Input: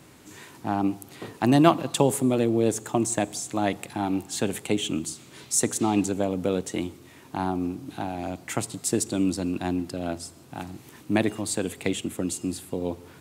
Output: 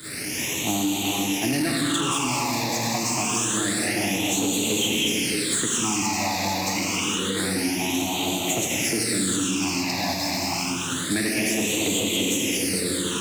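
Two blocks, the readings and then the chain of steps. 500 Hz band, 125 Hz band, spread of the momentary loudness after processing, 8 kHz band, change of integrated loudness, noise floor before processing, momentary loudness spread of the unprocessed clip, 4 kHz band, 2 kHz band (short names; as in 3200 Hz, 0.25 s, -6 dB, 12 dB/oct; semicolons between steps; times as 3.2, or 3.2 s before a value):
-2.0 dB, -0.5 dB, 3 LU, +8.0 dB, +3.5 dB, -51 dBFS, 14 LU, +12.5 dB, +10.0 dB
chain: delta modulation 64 kbps, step -31.5 dBFS; non-linear reverb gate 0.49 s flat, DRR -3.5 dB; sample leveller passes 2; HPF 150 Hz 6 dB/oct; high shelf 2100 Hz +10.5 dB; expander -10 dBFS; on a send: delay with a stepping band-pass 0.206 s, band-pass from 2800 Hz, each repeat -1.4 oct, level 0 dB; on the sum: compressor 3:1, threshold -23 dBFS, peak gain reduction 12.5 dB; phaser stages 8, 0.27 Hz, lowest notch 410–1600 Hz; soft clip -18 dBFS, distortion -20 dB; three-band squash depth 70%; gain +2.5 dB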